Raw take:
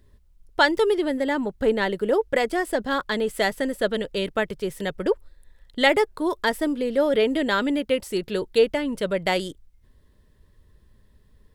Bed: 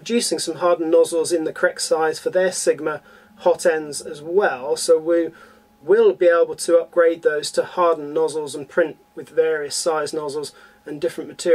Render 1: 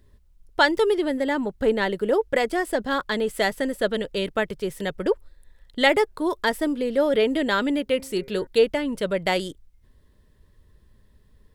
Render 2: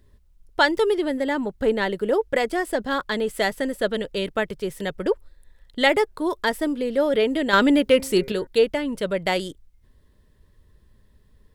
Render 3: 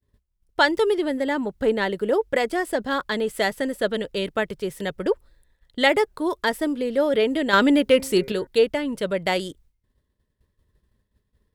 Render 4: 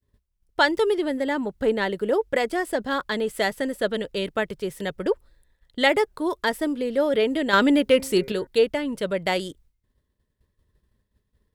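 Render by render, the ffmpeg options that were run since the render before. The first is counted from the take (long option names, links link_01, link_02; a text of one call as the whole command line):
ffmpeg -i in.wav -filter_complex "[0:a]asettb=1/sr,asplit=3[link_01][link_02][link_03];[link_01]atrim=end=7.834[link_04];[link_02]atrim=start=7.83:end=8.47,asetpts=PTS-STARTPTS,afade=type=in:duration=0.004:curve=qsin,afade=type=out:start_time=0.636:duration=0.004:curve=qsin,bandreject=frequency=133.4:width_type=h:width=4,bandreject=frequency=266.8:width_type=h:width=4,bandreject=frequency=400.2:width_type=h:width=4,bandreject=frequency=533.6:width_type=h:width=4,bandreject=frequency=667:width_type=h:width=4,bandreject=frequency=800.4:width_type=h:width=4,bandreject=frequency=933.8:width_type=h:width=4,bandreject=frequency=1067.2:width_type=h:width=4,bandreject=frequency=1200.6:width_type=h:width=4,bandreject=frequency=1334:width_type=h:width=4,bandreject=frequency=1467.4:width_type=h:width=4,bandreject=frequency=1600.8:width_type=h:width=4,bandreject=frequency=1734.2:width_type=h:width=4,bandreject=frequency=1867.6:width_type=h:width=4,bandreject=frequency=2001:width_type=h:width=4,bandreject=frequency=2134.4:width_type=h:width=4,bandreject=frequency=2267.8:width_type=h:width=4,bandreject=frequency=2401.2:width_type=h:width=4[link_05];[link_03]atrim=start=8.466[link_06];[link_04][link_05]acrossfade=duration=0.004:curve1=hsin:curve2=qsin[link_07];[link_07][link_06]acrossfade=duration=0.004:curve1=qsin:curve2=hsin" out.wav
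ffmpeg -i in.wav -filter_complex "[0:a]asettb=1/sr,asplit=3[link_01][link_02][link_03];[link_01]atrim=end=7.534[link_04];[link_02]atrim=start=7.53:end=8.32,asetpts=PTS-STARTPTS,afade=type=in:duration=0.004:curve=qsin,afade=type=out:start_time=0.786:duration=0.004:curve=qsin,acontrast=71[link_05];[link_03]atrim=start=8.316[link_06];[link_04][link_05]acrossfade=duration=0.004:curve1=hsin:curve2=qsin[link_07];[link_07][link_06]acrossfade=duration=0.004:curve1=qsin:curve2=hsin" out.wav
ffmpeg -i in.wav -af "highpass=frequency=42:poles=1,agate=range=-33dB:threshold=-50dB:ratio=3:detection=peak" out.wav
ffmpeg -i in.wav -af "volume=-1dB" out.wav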